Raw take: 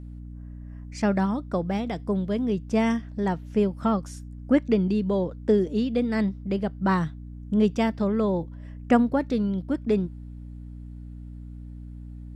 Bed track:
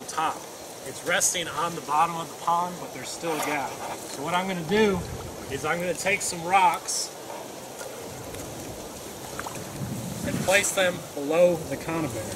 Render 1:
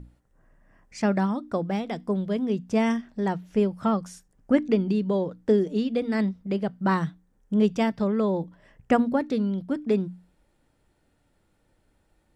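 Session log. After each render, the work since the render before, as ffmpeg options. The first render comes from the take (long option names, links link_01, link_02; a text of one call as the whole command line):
ffmpeg -i in.wav -af "bandreject=frequency=60:width_type=h:width=6,bandreject=frequency=120:width_type=h:width=6,bandreject=frequency=180:width_type=h:width=6,bandreject=frequency=240:width_type=h:width=6,bandreject=frequency=300:width_type=h:width=6" out.wav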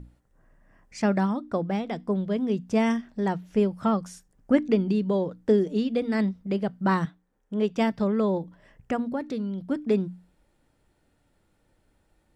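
ffmpeg -i in.wav -filter_complex "[0:a]asettb=1/sr,asplit=3[link_01][link_02][link_03];[link_01]atrim=end=1.334[link_04];[link_02]atrim=start=1.33:end=2.4,asetpts=PTS-STARTPTS,afade=type=in:duration=0.004:curve=qsin,afade=type=out:start_time=1.066:duration=0.004:curve=qsin,highshelf=frequency=5900:gain=-6.5[link_05];[link_03]atrim=start=2.396[link_06];[link_04][link_05]acrossfade=duration=0.004:curve1=hsin:curve2=qsin[link_07];[link_07][link_06]acrossfade=duration=0.004:curve1=qsin:curve2=hsin,asettb=1/sr,asplit=3[link_08][link_09][link_10];[link_08]atrim=end=7.054[link_11];[link_09]atrim=start=7.05:end=7.78,asetpts=PTS-STARTPTS,afade=type=in:duration=0.004:curve=qsin,afade=type=out:start_time=0.726:duration=0.004:curve=qsin,bass=frequency=250:gain=-10,treble=frequency=4000:gain=-6[link_12];[link_10]atrim=start=7.776[link_13];[link_11][link_12]acrossfade=duration=0.004:curve1=hsin:curve2=qsin[link_14];[link_14][link_13]acrossfade=duration=0.004:curve1=qsin:curve2=hsin,asettb=1/sr,asplit=3[link_15][link_16][link_17];[link_15]atrim=end=8.384[link_18];[link_16]atrim=start=8.38:end=9.66,asetpts=PTS-STARTPTS,afade=type=in:duration=0.004:curve=qsin,afade=type=out:start_time=1.276:duration=0.004:curve=qsin,acompressor=threshold=-35dB:ratio=1.5:attack=3.2:release=140:knee=1:detection=peak[link_19];[link_17]atrim=start=9.656[link_20];[link_18][link_19]acrossfade=duration=0.004:curve1=hsin:curve2=qsin[link_21];[link_21][link_20]acrossfade=duration=0.004:curve1=qsin:curve2=hsin" out.wav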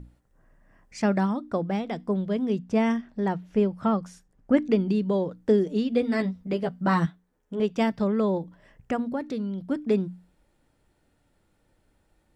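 ffmpeg -i in.wav -filter_complex "[0:a]asettb=1/sr,asplit=3[link_01][link_02][link_03];[link_01]atrim=end=2.594[link_04];[link_02]atrim=start=2.59:end=4.57,asetpts=PTS-STARTPTS,afade=type=in:duration=0.004:curve=qsin,afade=type=out:start_time=1.976:duration=0.004:curve=qsin,highshelf=frequency=5300:gain=-9.5[link_05];[link_03]atrim=start=4.566[link_06];[link_04][link_05]acrossfade=duration=0.004:curve1=hsin:curve2=qsin[link_07];[link_07][link_06]acrossfade=duration=0.004:curve1=qsin:curve2=hsin,asettb=1/sr,asplit=3[link_08][link_09][link_10];[link_08]atrim=end=5.914[link_11];[link_09]atrim=start=5.91:end=7.6,asetpts=PTS-STARTPTS,afade=type=in:duration=0.004:curve=qsin,afade=type=out:start_time=1.686:duration=0.004:curve=qsin,asplit=2[link_12][link_13];[link_13]adelay=12,volume=-4dB[link_14];[link_12][link_14]amix=inputs=2:normalize=0,atrim=end_sample=74529[link_15];[link_10]atrim=start=7.596[link_16];[link_11][link_15]acrossfade=duration=0.004:curve1=hsin:curve2=qsin[link_17];[link_17][link_16]acrossfade=duration=0.004:curve1=qsin:curve2=hsin" out.wav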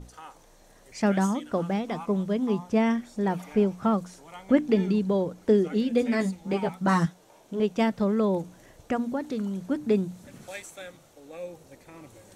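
ffmpeg -i in.wav -i bed.wav -filter_complex "[1:a]volume=-19dB[link_01];[0:a][link_01]amix=inputs=2:normalize=0" out.wav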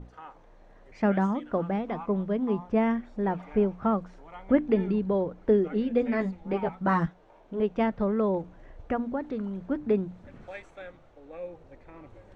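ffmpeg -i in.wav -af "asubboost=boost=5.5:cutoff=60,lowpass=2000" out.wav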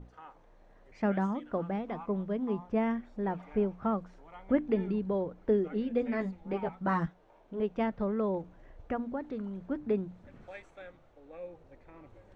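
ffmpeg -i in.wav -af "volume=-5dB" out.wav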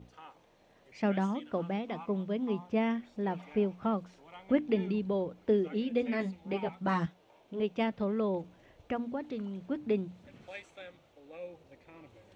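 ffmpeg -i in.wav -af "highpass=87,highshelf=frequency=2100:width_type=q:width=1.5:gain=7" out.wav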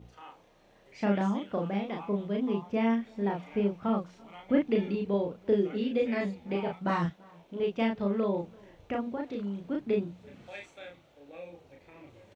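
ffmpeg -i in.wav -filter_complex "[0:a]asplit=2[link_01][link_02];[link_02]adelay=35,volume=-2dB[link_03];[link_01][link_03]amix=inputs=2:normalize=0,asplit=2[link_04][link_05];[link_05]adelay=338.2,volume=-26dB,highshelf=frequency=4000:gain=-7.61[link_06];[link_04][link_06]amix=inputs=2:normalize=0" out.wav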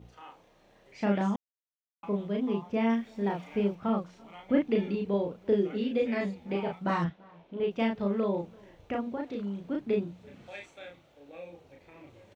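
ffmpeg -i in.wav -filter_complex "[0:a]asettb=1/sr,asplit=3[link_01][link_02][link_03];[link_01]atrim=end=2.894[link_04];[link_02]atrim=start=2.89:end=3.75,asetpts=PTS-STARTPTS,afade=type=in:duration=0.004:curve=qsin,afade=type=out:start_time=0.856:duration=0.004:curve=qsin,highshelf=frequency=4100:gain=6.5[link_05];[link_03]atrim=start=3.746[link_06];[link_04][link_05]acrossfade=duration=0.004:curve1=hsin:curve2=qsin[link_07];[link_07][link_06]acrossfade=duration=0.004:curve1=qsin:curve2=hsin,asettb=1/sr,asplit=3[link_08][link_09][link_10];[link_08]atrim=end=7.044[link_11];[link_09]atrim=start=7.04:end=7.71,asetpts=PTS-STARTPTS,afade=type=in:duration=0.004:curve=qsin,afade=type=out:start_time=0.666:duration=0.004:curve=qsin,lowpass=3700[link_12];[link_10]atrim=start=7.706[link_13];[link_11][link_12]acrossfade=duration=0.004:curve1=hsin:curve2=qsin[link_14];[link_14][link_13]acrossfade=duration=0.004:curve1=qsin:curve2=hsin,asplit=3[link_15][link_16][link_17];[link_15]atrim=end=1.36,asetpts=PTS-STARTPTS,afade=type=out:start_time=1.356:duration=0.004:curve=hsin[link_18];[link_16]atrim=start=1.36:end=2.03,asetpts=PTS-STARTPTS,volume=0[link_19];[link_17]atrim=start=2.03,asetpts=PTS-STARTPTS,afade=type=in:duration=0.004:curve=hsin[link_20];[link_18][link_19][link_20]concat=n=3:v=0:a=1" out.wav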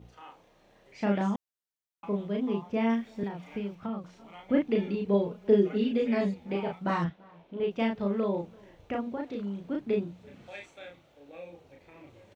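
ffmpeg -i in.wav -filter_complex "[0:a]asettb=1/sr,asplit=3[link_01][link_02][link_03];[link_01]atrim=end=3.234[link_04];[link_02]atrim=start=3.23:end=4.04,asetpts=PTS-STARTPTS,afade=type=in:duration=0.004:curve=qsin,afade=type=out:start_time=0.806:duration=0.004:curve=qsin,acrossover=split=270|1100[link_05][link_06][link_07];[link_05]acompressor=threshold=-35dB:ratio=4[link_08];[link_06]acompressor=threshold=-41dB:ratio=4[link_09];[link_07]acompressor=threshold=-48dB:ratio=4[link_10];[link_08][link_09][link_10]amix=inputs=3:normalize=0[link_11];[link_03]atrim=start=4.036[link_12];[link_04][link_11]acrossfade=duration=0.004:curve1=hsin:curve2=qsin[link_13];[link_13][link_12]acrossfade=duration=0.004:curve1=qsin:curve2=hsin,asettb=1/sr,asplit=3[link_14][link_15][link_16];[link_14]atrim=end=5.084[link_17];[link_15]atrim=start=5.08:end=6.34,asetpts=PTS-STARTPTS,afade=type=in:duration=0.004:curve=qsin,afade=type=out:start_time=1.256:duration=0.004:curve=qsin,aecho=1:1:4.8:0.65,atrim=end_sample=55566[link_18];[link_16]atrim=start=6.336[link_19];[link_17][link_18]acrossfade=duration=0.004:curve1=hsin:curve2=qsin[link_20];[link_20][link_19]acrossfade=duration=0.004:curve1=qsin:curve2=hsin" out.wav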